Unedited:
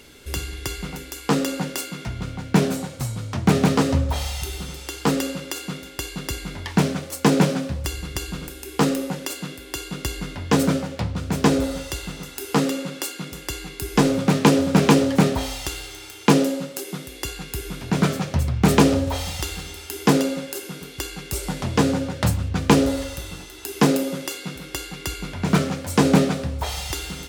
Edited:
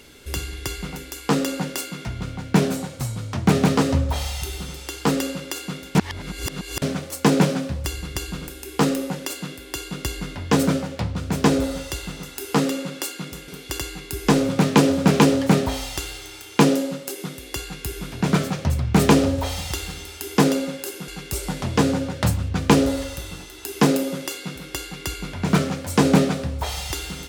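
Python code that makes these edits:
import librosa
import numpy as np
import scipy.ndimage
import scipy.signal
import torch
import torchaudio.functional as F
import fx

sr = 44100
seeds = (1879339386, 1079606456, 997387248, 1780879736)

y = fx.edit(x, sr, fx.reverse_span(start_s=5.95, length_s=0.87),
    fx.move(start_s=20.77, length_s=0.31, to_s=13.48), tone=tone)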